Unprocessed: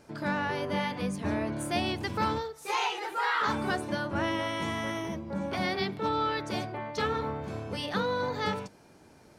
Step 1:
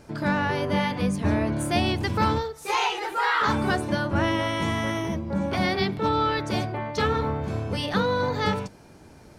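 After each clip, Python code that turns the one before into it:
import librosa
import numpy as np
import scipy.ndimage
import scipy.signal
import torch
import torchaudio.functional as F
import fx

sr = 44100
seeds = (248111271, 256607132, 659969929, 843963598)

y = fx.low_shelf(x, sr, hz=110.0, db=10.5)
y = y * 10.0 ** (5.0 / 20.0)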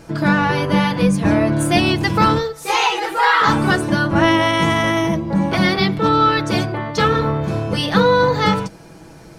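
y = x + 0.57 * np.pad(x, (int(6.1 * sr / 1000.0), 0))[:len(x)]
y = y * 10.0 ** (7.5 / 20.0)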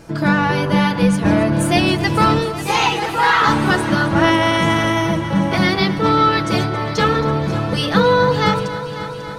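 y = fx.echo_heads(x, sr, ms=272, heads='first and second', feedback_pct=66, wet_db=-16.0)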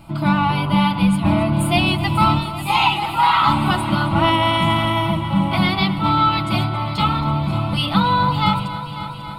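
y = fx.fixed_phaser(x, sr, hz=1700.0, stages=6)
y = y * 10.0 ** (1.5 / 20.0)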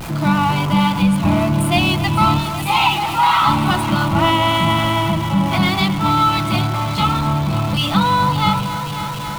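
y = x + 0.5 * 10.0 ** (-24.5 / 20.0) * np.sign(x)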